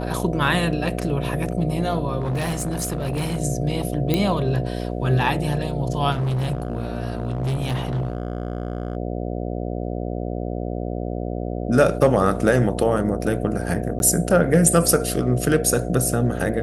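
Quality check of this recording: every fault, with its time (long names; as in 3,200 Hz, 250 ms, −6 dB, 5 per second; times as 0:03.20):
mains buzz 60 Hz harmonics 12 −27 dBFS
0:02.19–0:03.38: clipping −20.5 dBFS
0:04.14: click −7 dBFS
0:06.11–0:08.97: clipping −20 dBFS
0:13.99–0:14.00: drop-out 11 ms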